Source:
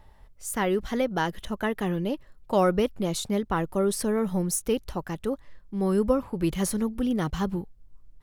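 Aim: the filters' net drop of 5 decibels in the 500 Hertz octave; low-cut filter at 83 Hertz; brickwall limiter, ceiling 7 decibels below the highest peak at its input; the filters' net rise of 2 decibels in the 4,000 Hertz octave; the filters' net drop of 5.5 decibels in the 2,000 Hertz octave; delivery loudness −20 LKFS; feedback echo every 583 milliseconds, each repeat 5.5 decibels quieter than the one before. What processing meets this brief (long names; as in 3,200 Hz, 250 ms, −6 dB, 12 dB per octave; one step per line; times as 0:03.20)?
high-pass filter 83 Hz
parametric band 500 Hz −6 dB
parametric band 2,000 Hz −8 dB
parametric band 4,000 Hz +5.5 dB
brickwall limiter −21.5 dBFS
repeating echo 583 ms, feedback 53%, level −5.5 dB
level +10.5 dB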